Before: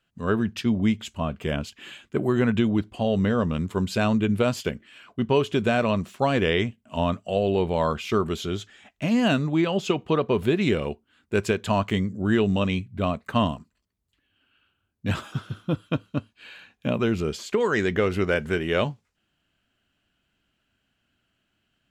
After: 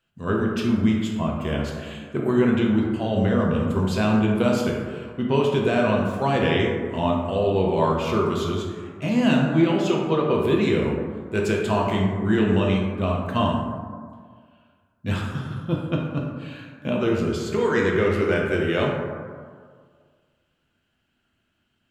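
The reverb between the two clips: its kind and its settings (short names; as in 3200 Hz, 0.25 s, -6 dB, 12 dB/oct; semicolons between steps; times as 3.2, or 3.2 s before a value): plate-style reverb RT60 1.8 s, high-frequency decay 0.35×, DRR -2 dB; gain -2.5 dB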